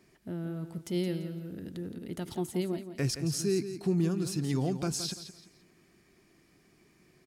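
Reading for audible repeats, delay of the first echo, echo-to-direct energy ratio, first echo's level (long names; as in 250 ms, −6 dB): 3, 170 ms, −10.0 dB, −10.5 dB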